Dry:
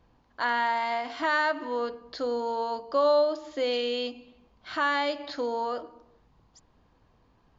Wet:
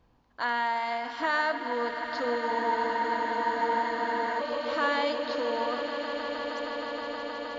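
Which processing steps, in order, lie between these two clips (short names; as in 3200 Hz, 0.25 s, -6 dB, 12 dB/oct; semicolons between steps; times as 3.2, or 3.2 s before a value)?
swelling echo 0.157 s, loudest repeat 8, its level -13 dB; spectral freeze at 2.51, 1.88 s; gain -2 dB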